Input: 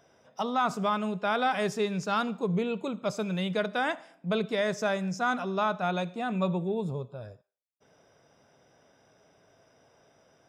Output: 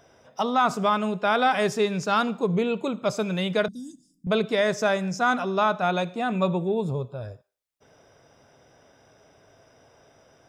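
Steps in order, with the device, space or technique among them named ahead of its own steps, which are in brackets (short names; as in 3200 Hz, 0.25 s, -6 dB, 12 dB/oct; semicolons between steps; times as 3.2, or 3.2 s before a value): 3.68–4.27 elliptic band-stop 240–6200 Hz, stop band 50 dB; low shelf boost with a cut just above (low shelf 110 Hz +6.5 dB; bell 180 Hz -4.5 dB 0.62 oct); gain +5.5 dB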